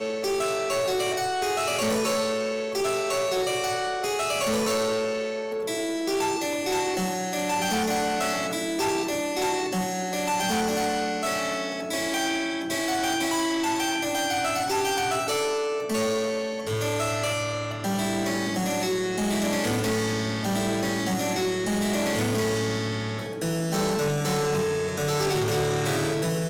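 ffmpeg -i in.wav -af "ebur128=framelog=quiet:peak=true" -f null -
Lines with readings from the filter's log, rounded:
Integrated loudness:
  I:         -25.9 LUFS
  Threshold: -35.9 LUFS
Loudness range:
  LRA:         1.2 LU
  Threshold: -45.9 LUFS
  LRA low:   -26.5 LUFS
  LRA high:  -25.3 LUFS
True peak:
  Peak:      -20.8 dBFS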